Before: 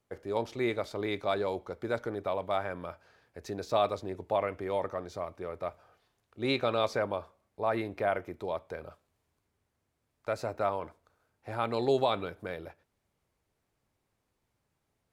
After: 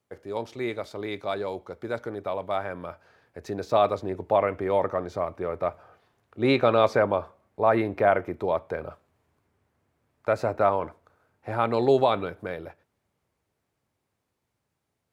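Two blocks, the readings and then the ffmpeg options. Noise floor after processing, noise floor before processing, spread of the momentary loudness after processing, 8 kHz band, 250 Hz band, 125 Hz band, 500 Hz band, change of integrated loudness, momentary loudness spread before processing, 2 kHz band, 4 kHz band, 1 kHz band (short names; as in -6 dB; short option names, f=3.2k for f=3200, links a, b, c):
-80 dBFS, -80 dBFS, 15 LU, n/a, +6.5 dB, +6.5 dB, +7.0 dB, +6.5 dB, 14 LU, +5.5 dB, +1.5 dB, +7.0 dB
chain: -filter_complex "[0:a]highpass=65,acrossover=split=2400[a][b];[a]dynaudnorm=f=550:g=13:m=9dB[c];[c][b]amix=inputs=2:normalize=0"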